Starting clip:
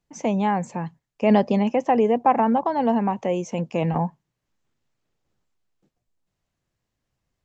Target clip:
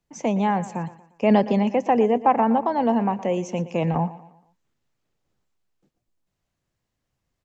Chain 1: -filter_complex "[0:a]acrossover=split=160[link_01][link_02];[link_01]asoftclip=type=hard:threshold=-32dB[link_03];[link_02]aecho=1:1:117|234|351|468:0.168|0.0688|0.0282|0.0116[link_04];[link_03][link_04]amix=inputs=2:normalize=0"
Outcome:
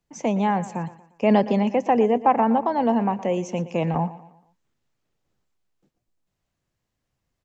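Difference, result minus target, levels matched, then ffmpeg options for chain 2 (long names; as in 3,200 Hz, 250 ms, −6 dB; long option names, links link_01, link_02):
hard clipping: distortion +17 dB
-filter_complex "[0:a]acrossover=split=160[link_01][link_02];[link_01]asoftclip=type=hard:threshold=-25dB[link_03];[link_02]aecho=1:1:117|234|351|468:0.168|0.0688|0.0282|0.0116[link_04];[link_03][link_04]amix=inputs=2:normalize=0"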